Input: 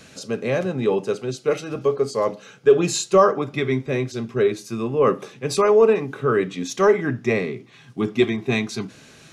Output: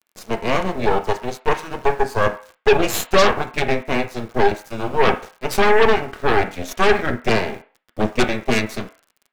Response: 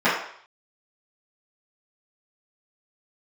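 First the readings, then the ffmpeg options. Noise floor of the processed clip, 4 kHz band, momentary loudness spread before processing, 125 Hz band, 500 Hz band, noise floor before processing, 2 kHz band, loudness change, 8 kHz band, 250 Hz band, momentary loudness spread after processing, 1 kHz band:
-67 dBFS, +6.0 dB, 11 LU, 0.0 dB, -1.0 dB, -48 dBFS, +7.5 dB, +1.0 dB, -0.5 dB, -0.5 dB, 10 LU, +6.0 dB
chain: -filter_complex "[0:a]aeval=exprs='0.631*(cos(1*acos(clip(val(0)/0.631,-1,1)))-cos(1*PI/2))+0.224*(cos(8*acos(clip(val(0)/0.631,-1,1)))-cos(8*PI/2))':c=same,aeval=exprs='val(0)*gte(abs(val(0)),0.015)':c=same,asplit=2[s0][s1];[1:a]atrim=start_sample=2205,asetrate=61740,aresample=44100,lowpass=3000[s2];[s1][s2]afir=irnorm=-1:irlink=0,volume=0.0631[s3];[s0][s3]amix=inputs=2:normalize=0,volume=0.708"

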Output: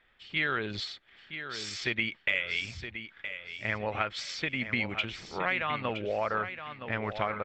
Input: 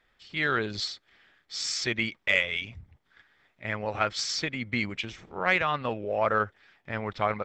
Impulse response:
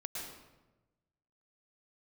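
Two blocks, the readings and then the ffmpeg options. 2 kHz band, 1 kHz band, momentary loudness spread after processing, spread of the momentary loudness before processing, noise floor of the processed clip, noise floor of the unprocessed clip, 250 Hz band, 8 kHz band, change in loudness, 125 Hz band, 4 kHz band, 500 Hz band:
-2.0 dB, -4.0 dB, 10 LU, 11 LU, -64 dBFS, -71 dBFS, -3.0 dB, -10.0 dB, -3.5 dB, -2.5 dB, -3.5 dB, -4.0 dB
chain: -filter_complex "[0:a]equalizer=f=6700:w=0.43:g=4.5,acompressor=threshold=0.0447:ratio=6,highshelf=f=4000:t=q:w=1.5:g=-9.5,asplit=2[s0][s1];[s1]aecho=0:1:968|1936|2904:0.316|0.0759|0.0182[s2];[s0][s2]amix=inputs=2:normalize=0"

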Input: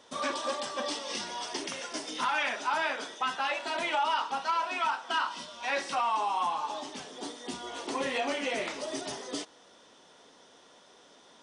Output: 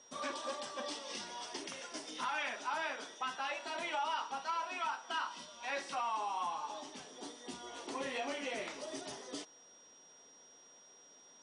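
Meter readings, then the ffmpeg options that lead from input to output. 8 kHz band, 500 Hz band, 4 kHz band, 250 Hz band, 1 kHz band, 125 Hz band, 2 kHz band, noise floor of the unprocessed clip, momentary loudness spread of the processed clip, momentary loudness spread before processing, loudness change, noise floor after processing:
-6.5 dB, -8.0 dB, -8.0 dB, -8.0 dB, -8.0 dB, no reading, -8.0 dB, -58 dBFS, 21 LU, 10 LU, -8.0 dB, -61 dBFS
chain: -af "aeval=exprs='val(0)+0.00282*sin(2*PI*5700*n/s)':c=same,volume=0.398"

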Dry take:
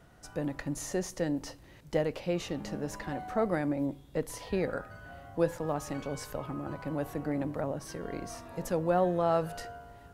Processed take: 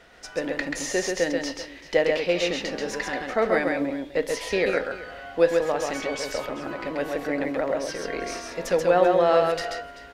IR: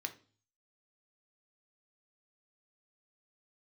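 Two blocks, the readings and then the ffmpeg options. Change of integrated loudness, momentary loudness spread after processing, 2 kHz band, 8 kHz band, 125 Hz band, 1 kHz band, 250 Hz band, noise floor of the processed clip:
+8.5 dB, 12 LU, +14.5 dB, +8.5 dB, -3.5 dB, +7.5 dB, +3.5 dB, -44 dBFS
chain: -filter_complex "[0:a]equalizer=f=125:t=o:w=1:g=-11,equalizer=f=500:t=o:w=1:g=7,equalizer=f=2000:t=o:w=1:g=8,equalizer=f=4000:t=o:w=1:g=5,aecho=1:1:134|386:0.668|0.141,asplit=2[s0][s1];[1:a]atrim=start_sample=2205,lowpass=7900,highshelf=f=2300:g=11[s2];[s1][s2]afir=irnorm=-1:irlink=0,volume=0.531[s3];[s0][s3]amix=inputs=2:normalize=0"

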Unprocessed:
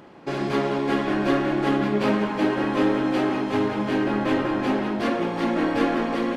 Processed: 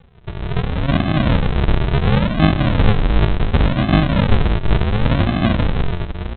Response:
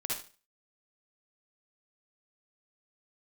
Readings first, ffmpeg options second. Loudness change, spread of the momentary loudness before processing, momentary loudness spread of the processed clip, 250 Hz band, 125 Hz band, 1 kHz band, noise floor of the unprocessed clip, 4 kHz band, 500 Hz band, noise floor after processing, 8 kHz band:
+5.5 dB, 3 LU, 8 LU, +2.5 dB, +17.5 dB, +2.0 dB, -28 dBFS, +7.5 dB, 0.0 dB, -31 dBFS, no reading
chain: -af "lowpass=2300,dynaudnorm=f=100:g=13:m=3.76,aresample=8000,acrusher=samples=24:mix=1:aa=0.000001:lfo=1:lforange=14.4:lforate=0.7,aresample=44100"

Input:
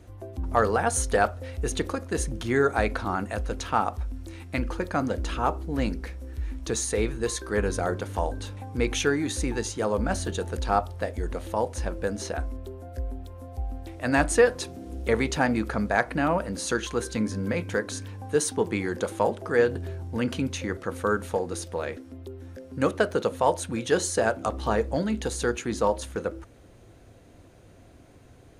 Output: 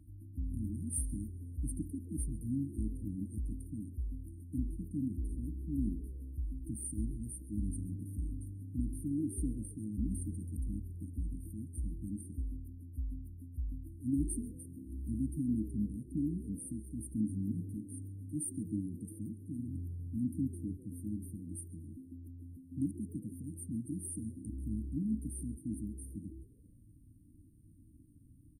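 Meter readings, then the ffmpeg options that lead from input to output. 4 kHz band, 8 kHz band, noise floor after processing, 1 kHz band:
under -40 dB, -12.0 dB, -59 dBFS, under -40 dB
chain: -filter_complex "[0:a]afftfilt=real='re*(1-between(b*sr/4096,330,8600))':imag='im*(1-between(b*sr/4096,330,8600))':win_size=4096:overlap=0.75,tremolo=f=56:d=0.182,asplit=4[s0][s1][s2][s3];[s1]adelay=135,afreqshift=73,volume=0.0841[s4];[s2]adelay=270,afreqshift=146,volume=0.0295[s5];[s3]adelay=405,afreqshift=219,volume=0.0104[s6];[s0][s4][s5][s6]amix=inputs=4:normalize=0,volume=0.531"

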